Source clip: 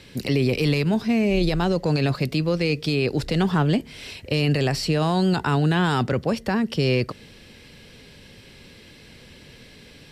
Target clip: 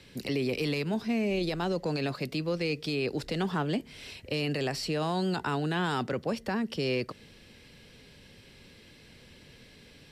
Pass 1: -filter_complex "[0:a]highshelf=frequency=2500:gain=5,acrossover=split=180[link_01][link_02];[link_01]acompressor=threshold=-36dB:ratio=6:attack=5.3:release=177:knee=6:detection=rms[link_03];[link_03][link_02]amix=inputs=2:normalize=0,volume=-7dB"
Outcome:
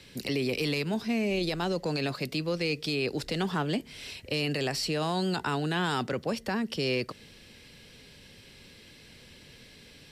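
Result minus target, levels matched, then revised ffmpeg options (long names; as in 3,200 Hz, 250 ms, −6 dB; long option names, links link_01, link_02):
4,000 Hz band +2.5 dB
-filter_complex "[0:a]acrossover=split=180[link_01][link_02];[link_01]acompressor=threshold=-36dB:ratio=6:attack=5.3:release=177:knee=6:detection=rms[link_03];[link_03][link_02]amix=inputs=2:normalize=0,volume=-7dB"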